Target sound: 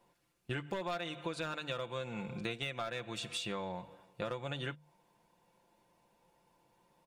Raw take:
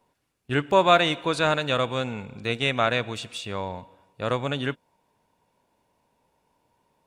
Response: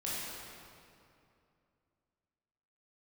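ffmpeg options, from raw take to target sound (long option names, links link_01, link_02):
-af "bandreject=frequency=50:width_type=h:width=6,bandreject=frequency=100:width_type=h:width=6,bandreject=frequency=150:width_type=h:width=6,volume=13.5dB,asoftclip=hard,volume=-13.5dB,aecho=1:1:5.8:0.61,acompressor=threshold=-33dB:ratio=16,volume=-2dB"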